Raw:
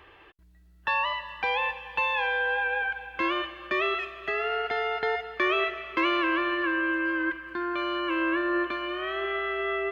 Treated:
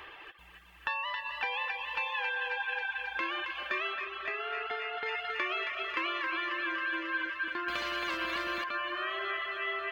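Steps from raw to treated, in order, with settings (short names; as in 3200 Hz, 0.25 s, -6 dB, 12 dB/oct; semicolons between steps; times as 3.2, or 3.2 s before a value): regenerating reverse delay 0.11 s, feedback 64%, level -13.5 dB; low shelf 500 Hz -11.5 dB; compressor 3:1, threshold -44 dBFS, peak gain reduction 15 dB; thinning echo 0.271 s, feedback 84%, high-pass 630 Hz, level -5.5 dB; reverb removal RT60 0.66 s; 3.93–5.06 high shelf 3800 Hz -9.5 dB; 7.68–8.64 spectral compressor 2:1; gain +8 dB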